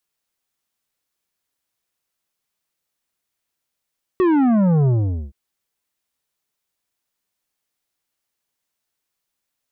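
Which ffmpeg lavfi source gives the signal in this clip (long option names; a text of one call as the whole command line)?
ffmpeg -f lavfi -i "aevalsrc='0.2*clip((1.12-t)/0.45,0,1)*tanh(3.16*sin(2*PI*380*1.12/log(65/380)*(exp(log(65/380)*t/1.12)-1)))/tanh(3.16)':duration=1.12:sample_rate=44100" out.wav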